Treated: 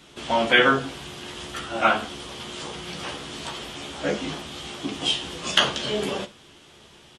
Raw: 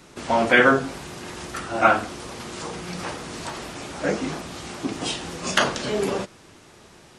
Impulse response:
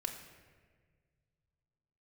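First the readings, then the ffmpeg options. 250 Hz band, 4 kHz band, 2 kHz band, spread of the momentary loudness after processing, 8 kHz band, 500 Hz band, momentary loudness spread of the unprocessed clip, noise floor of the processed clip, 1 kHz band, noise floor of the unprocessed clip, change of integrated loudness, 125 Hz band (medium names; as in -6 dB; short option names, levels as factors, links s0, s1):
-3.0 dB, +6.0 dB, -1.5 dB, 16 LU, -2.5 dB, -3.0 dB, 17 LU, -51 dBFS, -2.5 dB, -50 dBFS, -1.0 dB, -3.0 dB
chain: -filter_complex "[0:a]equalizer=f=3200:w=3:g=12,asplit=2[s0][s1];[s1]aecho=0:1:14|68:0.473|0.15[s2];[s0][s2]amix=inputs=2:normalize=0,volume=0.631"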